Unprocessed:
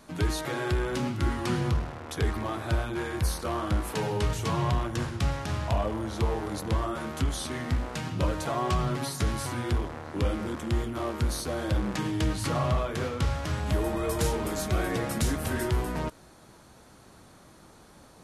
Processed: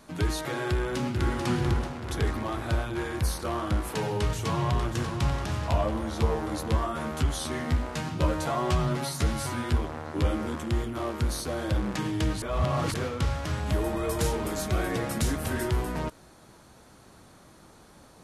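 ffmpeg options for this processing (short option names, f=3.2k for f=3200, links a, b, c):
-filter_complex "[0:a]asplit=2[a][b];[b]afade=t=in:st=0.7:d=0.01,afade=t=out:st=1.43:d=0.01,aecho=0:1:440|880|1320|1760|2200|2640|3080|3520|3960|4400:0.530884|0.345075|0.224299|0.145794|0.0947662|0.061598|0.0400387|0.0260252|0.0169164|0.0109956[c];[a][c]amix=inputs=2:normalize=0,asplit=2[d][e];[e]afade=t=in:st=4.15:d=0.01,afade=t=out:st=4.9:d=0.01,aecho=0:1:590|1180|1770|2360|2950|3540:0.398107|0.199054|0.0995268|0.0497634|0.0248817|0.0124408[f];[d][f]amix=inputs=2:normalize=0,asettb=1/sr,asplit=3[g][h][i];[g]atrim=end=5.684[j];[h]atrim=start=5.68:end=10.64,asetpts=PTS-STARTPTS,afade=t=in:d=0.004:c=qsin,afade=t=out:st=4.956:d=0.004:c=qsin,asplit=2[k][l];[l]adelay=13,volume=-5.5dB[m];[k][m]amix=inputs=2:normalize=0,atrim=end_sample=218736[n];[i]atrim=start=10.636[o];[j][n]acrossfade=d=0.004:c1=hsin:c2=qsin[p];[p][o]acrossfade=d=0.004:c1=qsin:c2=hsin,asplit=3[q][r][s];[q]atrim=end=12.422[t];[r]atrim=start=12.418:end=12.942,asetpts=PTS-STARTPTS,areverse[u];[s]atrim=start=12.938[v];[t][u]acrossfade=d=0.004:c1=hsin:c2=hsin[w];[w][v]acrossfade=d=0.004:c1=hsin:c2=hsin"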